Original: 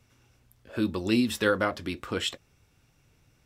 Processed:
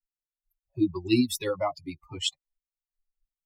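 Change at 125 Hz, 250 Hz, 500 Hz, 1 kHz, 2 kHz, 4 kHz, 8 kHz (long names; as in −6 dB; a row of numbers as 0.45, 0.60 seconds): −0.5, +0.5, −2.0, −2.5, −9.0, +0.5, +3.0 decibels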